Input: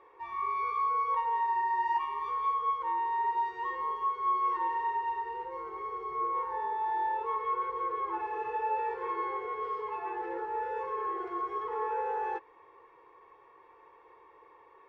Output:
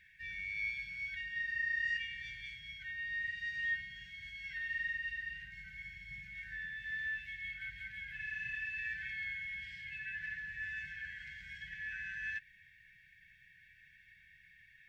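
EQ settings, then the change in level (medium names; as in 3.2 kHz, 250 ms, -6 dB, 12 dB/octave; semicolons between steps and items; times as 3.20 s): brick-wall FIR band-stop 210–1500 Hz; +8.0 dB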